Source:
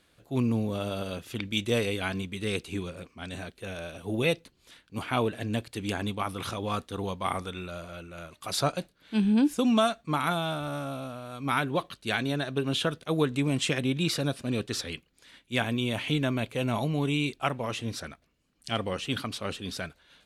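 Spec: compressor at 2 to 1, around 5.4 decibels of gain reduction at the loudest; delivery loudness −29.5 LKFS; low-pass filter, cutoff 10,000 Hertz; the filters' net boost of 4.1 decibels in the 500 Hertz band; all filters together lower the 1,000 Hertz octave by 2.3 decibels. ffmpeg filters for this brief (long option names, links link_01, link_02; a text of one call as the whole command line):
ffmpeg -i in.wav -af "lowpass=10000,equalizer=frequency=500:width_type=o:gain=6.5,equalizer=frequency=1000:width_type=o:gain=-6,acompressor=threshold=-27dB:ratio=2,volume=2dB" out.wav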